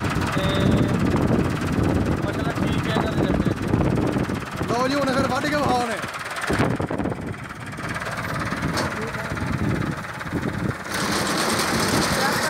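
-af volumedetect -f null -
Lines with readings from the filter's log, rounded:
mean_volume: -22.8 dB
max_volume: -8.1 dB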